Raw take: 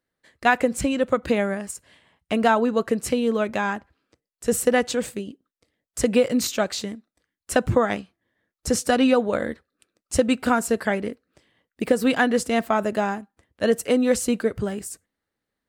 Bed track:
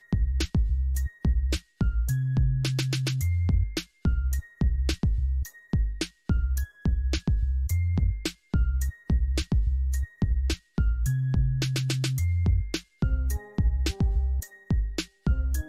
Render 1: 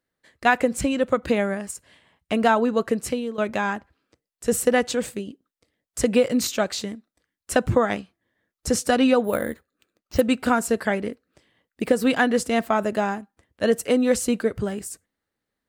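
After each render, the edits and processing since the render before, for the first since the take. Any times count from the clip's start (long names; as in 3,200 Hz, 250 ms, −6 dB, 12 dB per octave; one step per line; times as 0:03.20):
0:02.83–0:03.38: fade out equal-power, to −15 dB
0:09.24–0:10.21: bad sample-rate conversion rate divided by 4×, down filtered, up hold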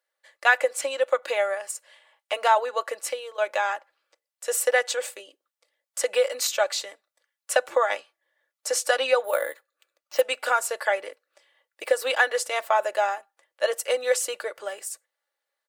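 inverse Chebyshev high-pass filter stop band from 250 Hz, stop band 40 dB
comb filter 3.5 ms, depth 52%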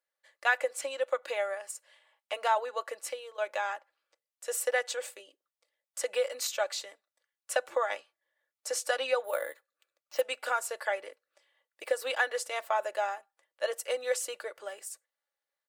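level −7.5 dB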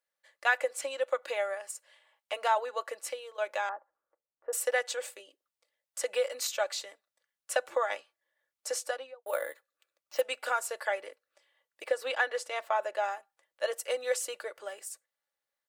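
0:03.69–0:04.53: low-pass filter 1,300 Hz 24 dB per octave
0:08.69–0:09.26: fade out and dull
0:11.84–0:13.04: high-shelf EQ 8,000 Hz −11 dB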